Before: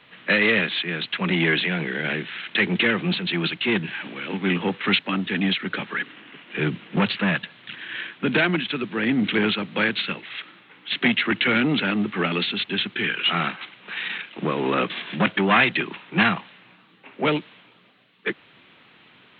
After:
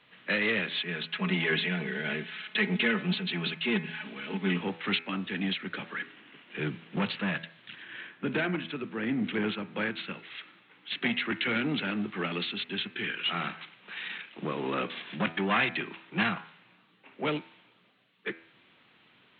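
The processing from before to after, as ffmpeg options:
-filter_complex "[0:a]asettb=1/sr,asplit=3[a][b][c];[a]atrim=end=0.734[d];[b]atrim=start=0.73:end=4.61,asetpts=PTS-STARTPTS,afade=t=in:d=0.004:c=qsin,afade=t=out:st=3.876:d=0.004:c=qsin,aecho=1:1:4.7:0.74,atrim=end_sample=171108[e];[c]atrim=start=4.606[f];[d][e]acrossfade=d=0.004:c1=hsin:c2=qsin[g];[g][f]acrossfade=d=0.004:c1=qsin:c2=hsin,asettb=1/sr,asplit=3[h][i][j];[h]atrim=end=7.824[k];[i]atrim=start=7.82:end=10.14,asetpts=PTS-STARTPTS,afade=t=in:d=0.004:c=qsin,afade=t=out:st=2.316:d=0.004:c=qsin,aemphasis=mode=reproduction:type=75fm[l];[j]atrim=start=10.136[m];[k][l]acrossfade=d=0.004:c1=hsin:c2=qsin[n];[n][m]acrossfade=d=0.004:c1=qsin:c2=hsin,bandreject=f=82.35:t=h:w=4,bandreject=f=164.7:t=h:w=4,bandreject=f=247.05:t=h:w=4,bandreject=f=329.4:t=h:w=4,bandreject=f=411.75:t=h:w=4,bandreject=f=494.1:t=h:w=4,bandreject=f=576.45:t=h:w=4,bandreject=f=658.8:t=h:w=4,bandreject=f=741.15:t=h:w=4,bandreject=f=823.5:t=h:w=4,bandreject=f=905.85:t=h:w=4,bandreject=f=988.2:t=h:w=4,bandreject=f=1.07055k:t=h:w=4,bandreject=f=1.1529k:t=h:w=4,bandreject=f=1.23525k:t=h:w=4,bandreject=f=1.3176k:t=h:w=4,bandreject=f=1.39995k:t=h:w=4,bandreject=f=1.4823k:t=h:w=4,bandreject=f=1.56465k:t=h:w=4,bandreject=f=1.647k:t=h:w=4,bandreject=f=1.72935k:t=h:w=4,bandreject=f=1.8117k:t=h:w=4,bandreject=f=1.89405k:t=h:w=4,bandreject=f=1.9764k:t=h:w=4,bandreject=f=2.05875k:t=h:w=4,bandreject=f=2.1411k:t=h:w=4,bandreject=f=2.22345k:t=h:w=4,bandreject=f=2.3058k:t=h:w=4,bandreject=f=2.38815k:t=h:w=4,bandreject=f=2.4705k:t=h:w=4,bandreject=f=2.55285k:t=h:w=4,bandreject=f=2.6352k:t=h:w=4,volume=-8.5dB"

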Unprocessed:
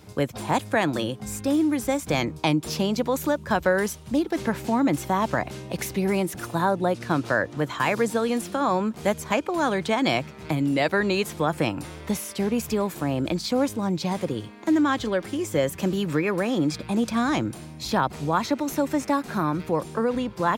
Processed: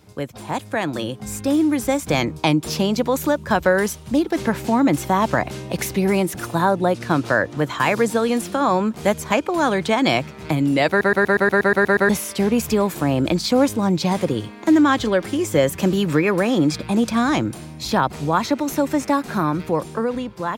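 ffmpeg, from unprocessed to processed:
-filter_complex "[0:a]asplit=11[a][b][c][d][e][f][g][h][i][j][k];[a]atrim=end=11.012[l];[b]atrim=start=10.888:end=11.012[m];[c]atrim=start=10.888:end=11.012[n];[d]atrim=start=10.888:end=11.012[o];[e]atrim=start=10.888:end=11.012[p];[f]atrim=start=10.888:end=11.012[q];[g]atrim=start=10.888:end=11.012[r];[h]atrim=start=10.888:end=11.012[s];[i]atrim=start=10.888:end=11.012[t];[j]atrim=start=10.888:end=11.012[u];[k]atrim=start=12.088[v];[l][m]acrossfade=d=0.004:c1=hsin:c2=hsin[w];[w][n]acrossfade=d=0.004:c1=hsin:c2=hsin[x];[x][o]acrossfade=d=0.004:c1=hsin:c2=hsin[y];[y][p]acrossfade=d=0.004:c1=hsin:c2=hsin[z];[z][q]acrossfade=d=0.004:c1=hsin:c2=hsin[aa];[aa][r]acrossfade=d=0.004:c1=hsin:c2=hsin[ab];[ab][s]acrossfade=d=0.004:c1=hsin:c2=hsin[ac];[ac][t]acrossfade=d=0.004:c1=hsin:c2=hsin[ad];[ad][u]acrossfade=d=0.004:c1=hsin:c2=hsin[ae];[ae][v]acrossfade=d=0.004:c1=hsin:c2=hsin,dynaudnorm=f=440:g=5:m=11.5dB,volume=-3dB"

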